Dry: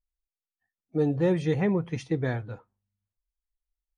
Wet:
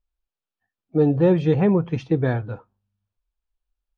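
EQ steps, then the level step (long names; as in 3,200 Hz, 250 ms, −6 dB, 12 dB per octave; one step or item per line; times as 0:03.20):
low-pass filter 3,100 Hz 12 dB per octave
parametric band 2,000 Hz −10.5 dB 0.26 octaves
+7.0 dB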